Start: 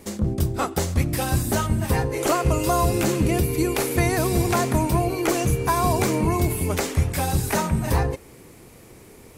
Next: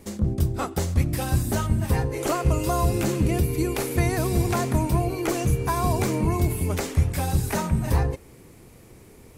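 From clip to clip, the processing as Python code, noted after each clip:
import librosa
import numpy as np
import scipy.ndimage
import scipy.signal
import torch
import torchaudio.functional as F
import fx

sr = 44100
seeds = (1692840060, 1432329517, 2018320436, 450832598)

y = fx.low_shelf(x, sr, hz=200.0, db=6.0)
y = y * librosa.db_to_amplitude(-4.5)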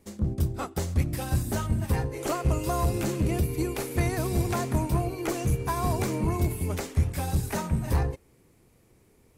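y = 10.0 ** (-14.5 / 20.0) * np.tanh(x / 10.0 ** (-14.5 / 20.0))
y = fx.upward_expand(y, sr, threshold_db=-42.0, expansion=1.5)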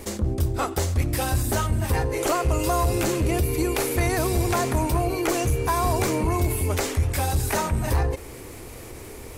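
y = fx.peak_eq(x, sr, hz=170.0, db=-11.5, octaves=1.0)
y = fx.env_flatten(y, sr, amount_pct=50)
y = y * librosa.db_to_amplitude(2.5)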